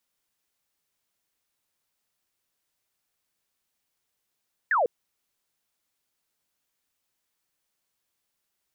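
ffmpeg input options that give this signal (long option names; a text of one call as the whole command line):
ffmpeg -f lavfi -i "aevalsrc='0.106*clip(t/0.002,0,1)*clip((0.15-t)/0.002,0,1)*sin(2*PI*1900*0.15/log(440/1900)*(exp(log(440/1900)*t/0.15)-1))':duration=0.15:sample_rate=44100" out.wav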